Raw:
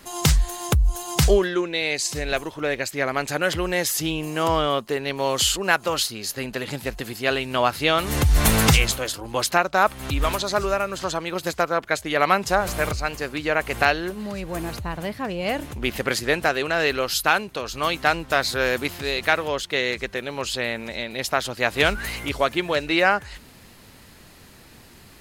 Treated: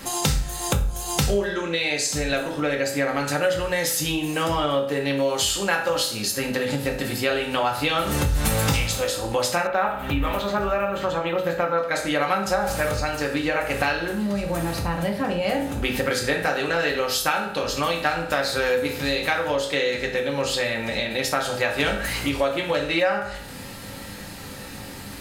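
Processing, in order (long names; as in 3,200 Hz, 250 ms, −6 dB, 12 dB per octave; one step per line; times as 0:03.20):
convolution reverb RT60 0.50 s, pre-delay 3 ms, DRR −1.5 dB
downward compressor 3 to 1, threshold −32 dBFS, peak gain reduction 18.5 dB
0:09.67–0:11.78: flat-topped bell 7,100 Hz −13.5 dB
level +7.5 dB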